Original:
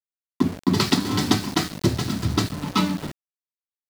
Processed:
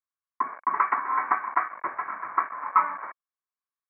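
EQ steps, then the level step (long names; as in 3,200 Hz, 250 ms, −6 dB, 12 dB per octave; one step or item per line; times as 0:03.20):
high-pass with resonance 1,100 Hz, resonance Q 9.6
Chebyshev low-pass with heavy ripple 2,300 Hz, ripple 6 dB
0.0 dB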